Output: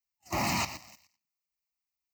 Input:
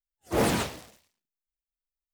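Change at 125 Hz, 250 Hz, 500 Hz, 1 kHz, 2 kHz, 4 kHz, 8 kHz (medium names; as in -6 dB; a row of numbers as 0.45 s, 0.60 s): -4.5 dB, -7.0 dB, -11.5 dB, -0.5 dB, -0.5 dB, -0.5 dB, -1.0 dB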